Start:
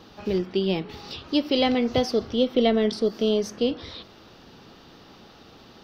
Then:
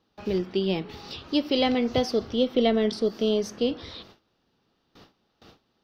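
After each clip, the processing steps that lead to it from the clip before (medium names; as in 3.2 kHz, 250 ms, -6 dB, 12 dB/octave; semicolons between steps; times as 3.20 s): gate with hold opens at -37 dBFS; trim -1.5 dB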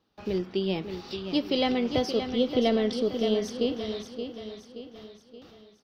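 feedback delay 575 ms, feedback 47%, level -8.5 dB; trim -2.5 dB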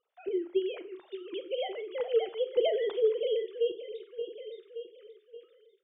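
formants replaced by sine waves; random-step tremolo; on a send at -11 dB: reverberation RT60 0.30 s, pre-delay 32 ms; on the sum: trim -1.5 dB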